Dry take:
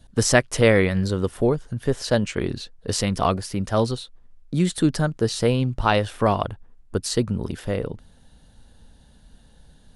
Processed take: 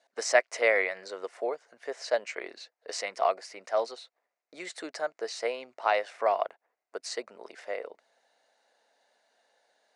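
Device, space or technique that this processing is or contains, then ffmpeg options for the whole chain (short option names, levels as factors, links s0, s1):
phone speaker on a table: -af "highpass=f=470:w=0.5412,highpass=f=470:w=1.3066,equalizer=f=670:t=q:w=4:g=8,equalizer=f=2100:t=q:w=4:g=9,equalizer=f=3300:t=q:w=4:g=-8,lowpass=f=7400:w=0.5412,lowpass=f=7400:w=1.3066,volume=0.398"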